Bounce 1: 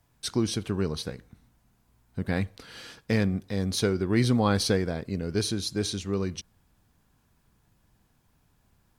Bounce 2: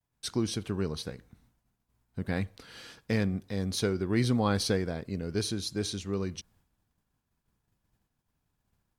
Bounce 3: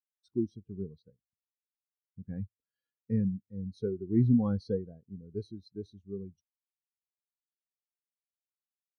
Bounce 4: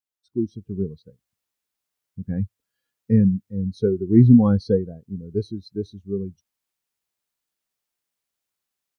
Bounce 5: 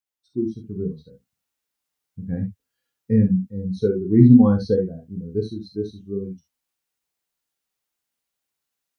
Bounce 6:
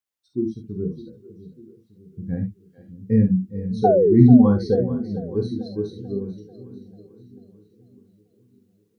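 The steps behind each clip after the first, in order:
downward expander −58 dBFS; level −3.5 dB
every bin expanded away from the loudest bin 2.5 to 1
automatic gain control gain up to 11 dB; level +1.5 dB
reverb whose tail is shaped and stops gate 90 ms flat, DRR 2 dB; level −1 dB
sound drawn into the spectrogram fall, 0:03.84–0:04.15, 340–780 Hz −16 dBFS; echo with a time of its own for lows and highs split 370 Hz, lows 602 ms, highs 441 ms, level −15 dB

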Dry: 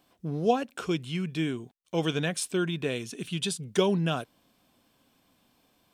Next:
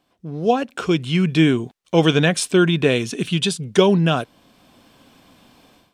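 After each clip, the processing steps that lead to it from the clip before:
high-shelf EQ 10,000 Hz −12 dB
automatic gain control gain up to 16 dB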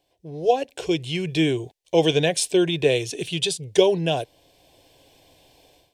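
phaser with its sweep stopped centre 530 Hz, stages 4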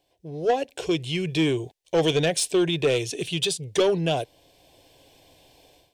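soft clipping −14 dBFS, distortion −13 dB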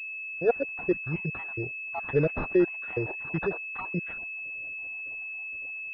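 time-frequency cells dropped at random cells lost 64%
switching amplifier with a slow clock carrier 2,600 Hz

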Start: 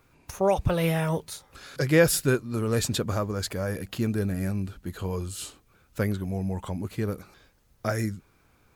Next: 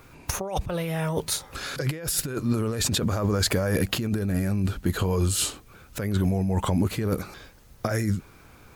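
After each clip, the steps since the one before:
compressor whose output falls as the input rises −32 dBFS, ratio −1
level +6.5 dB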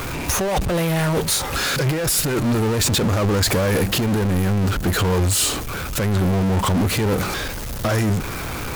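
power curve on the samples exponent 0.35
level −3.5 dB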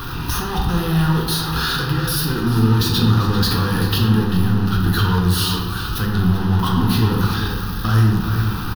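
phaser with its sweep stopped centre 2,200 Hz, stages 6
slap from a distant wall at 67 metres, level −8 dB
convolution reverb RT60 1.2 s, pre-delay 8 ms, DRR −1 dB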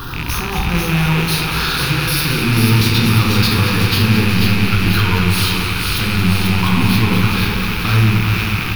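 loose part that buzzes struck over −26 dBFS, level −13 dBFS
delay with a high-pass on its return 490 ms, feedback 61%, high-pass 1,800 Hz, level −4 dB
feedback echo with a swinging delay time 225 ms, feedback 74%, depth 62 cents, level −9 dB
level +1 dB

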